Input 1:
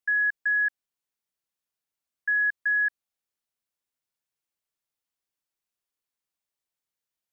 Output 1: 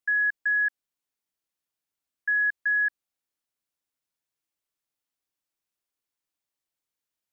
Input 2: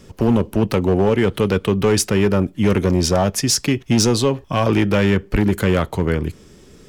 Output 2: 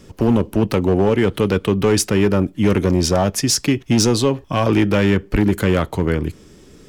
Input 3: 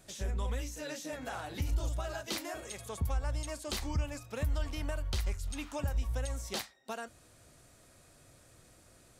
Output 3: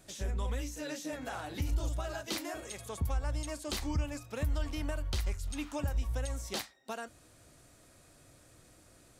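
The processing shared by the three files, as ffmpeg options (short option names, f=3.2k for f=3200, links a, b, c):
-af "equalizer=f=300:t=o:w=0.23:g=4.5"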